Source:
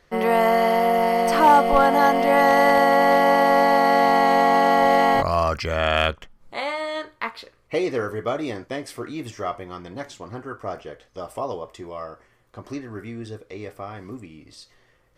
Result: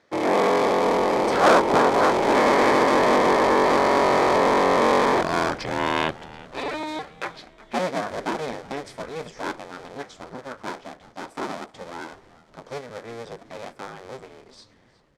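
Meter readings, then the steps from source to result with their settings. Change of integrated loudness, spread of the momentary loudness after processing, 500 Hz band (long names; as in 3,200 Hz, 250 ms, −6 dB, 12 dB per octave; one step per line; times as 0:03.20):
−2.0 dB, 20 LU, −1.0 dB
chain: sub-harmonics by changed cycles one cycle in 2, inverted
band-pass filter 160–7,100 Hz
parametric band 490 Hz +3.5 dB 1.3 octaves
notch filter 2,800 Hz, Q 11
echo with shifted repeats 366 ms, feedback 55%, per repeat −140 Hz, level −19 dB
level −3.5 dB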